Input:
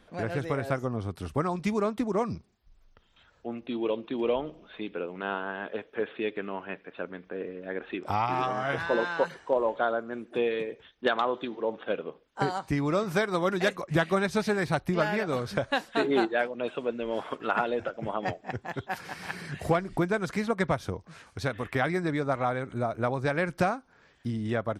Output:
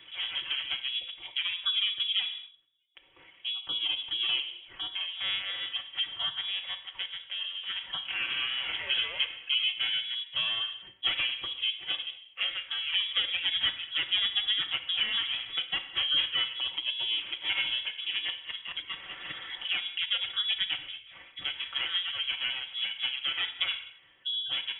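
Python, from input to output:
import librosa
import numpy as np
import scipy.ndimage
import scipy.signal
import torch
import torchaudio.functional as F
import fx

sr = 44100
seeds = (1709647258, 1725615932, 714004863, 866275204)

y = fx.lower_of_two(x, sr, delay_ms=4.9)
y = fx.spec_gate(y, sr, threshold_db=-30, keep='strong')
y = scipy.signal.sosfilt(scipy.signal.ellip(4, 1.0, 40, 200.0, 'highpass', fs=sr, output='sos'), y)
y = fx.high_shelf(y, sr, hz=2100.0, db=-6.0)
y = fx.rev_gated(y, sr, seeds[0], gate_ms=270, shape='falling', drr_db=8.5)
y = fx.freq_invert(y, sr, carrier_hz=3600)
y = fx.band_squash(y, sr, depth_pct=40)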